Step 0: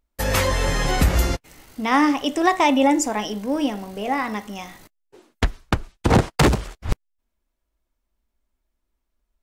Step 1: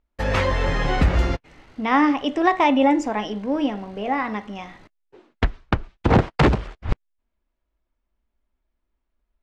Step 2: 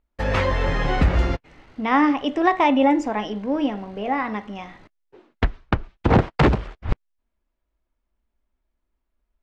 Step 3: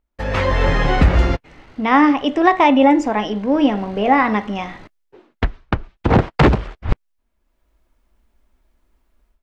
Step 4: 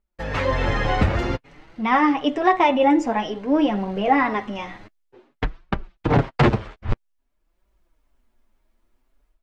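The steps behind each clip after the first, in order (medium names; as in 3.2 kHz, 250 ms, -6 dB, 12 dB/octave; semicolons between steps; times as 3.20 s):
low-pass 3.1 kHz 12 dB/octave
treble shelf 6.4 kHz -7.5 dB
level rider gain up to 15.5 dB; trim -1 dB
flange 0.52 Hz, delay 5 ms, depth 4.8 ms, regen +3%; trim -1 dB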